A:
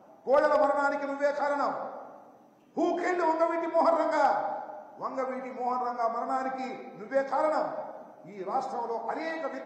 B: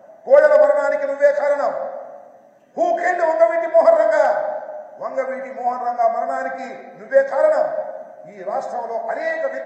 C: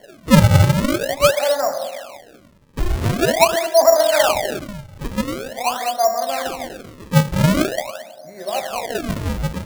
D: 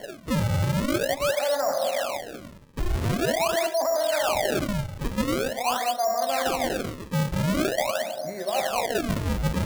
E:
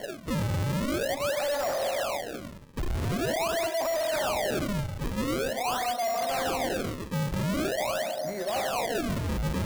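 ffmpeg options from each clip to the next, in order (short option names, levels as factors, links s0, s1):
-af "superequalizer=6b=0.631:8b=3.55:11b=3.16:15b=1.78,volume=1.33"
-af "acrusher=samples=35:mix=1:aa=0.000001:lfo=1:lforange=56:lforate=0.45"
-af "alimiter=limit=0.237:level=0:latency=1:release=29,areverse,acompressor=threshold=0.0282:ratio=5,areverse,volume=2.37"
-af "asoftclip=type=tanh:threshold=0.0422,volume=1.26"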